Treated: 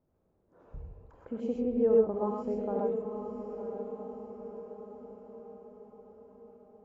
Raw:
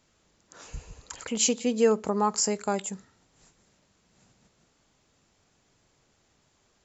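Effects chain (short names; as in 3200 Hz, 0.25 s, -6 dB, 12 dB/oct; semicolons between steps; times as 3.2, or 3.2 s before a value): Chebyshev low-pass 580 Hz, order 2; diffused feedback echo 0.995 s, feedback 52%, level -8 dB; non-linear reverb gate 0.15 s rising, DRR -1.5 dB; gain -5.5 dB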